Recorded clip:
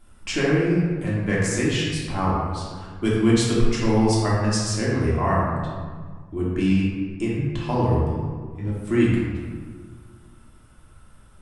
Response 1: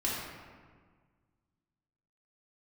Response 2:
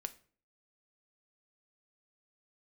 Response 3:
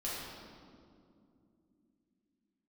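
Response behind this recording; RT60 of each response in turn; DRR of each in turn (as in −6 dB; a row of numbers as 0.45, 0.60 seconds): 1; 1.6, 0.45, 2.6 seconds; −7.0, 9.5, −8.0 decibels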